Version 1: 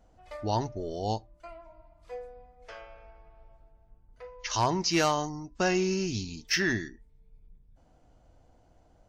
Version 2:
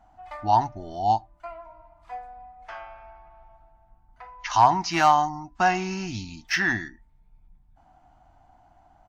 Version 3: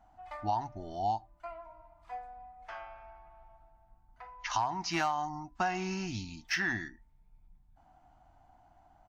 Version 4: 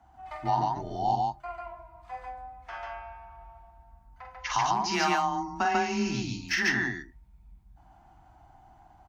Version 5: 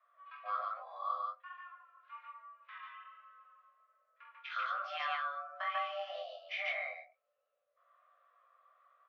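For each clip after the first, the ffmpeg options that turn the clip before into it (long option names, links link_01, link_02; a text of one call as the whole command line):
ffmpeg -i in.wav -af "firequalizer=gain_entry='entry(320,0);entry(470,-16);entry(740,14);entry(1100,9);entry(2500,3);entry(5000,-3)':delay=0.05:min_phase=1" out.wav
ffmpeg -i in.wav -af "acompressor=threshold=-22dB:ratio=10,volume=-5dB" out.wav
ffmpeg -i in.wav -af "afreqshift=20,aecho=1:1:46.65|142.9:0.562|0.891,volume=3dB" out.wav
ffmpeg -i in.wav -af "flanger=delay=18.5:depth=5.2:speed=1.2,highpass=frequency=170:width_type=q:width=0.5412,highpass=frequency=170:width_type=q:width=1.307,lowpass=frequency=3500:width_type=q:width=0.5176,lowpass=frequency=3500:width_type=q:width=0.7071,lowpass=frequency=3500:width_type=q:width=1.932,afreqshift=390,volume=-8dB" out.wav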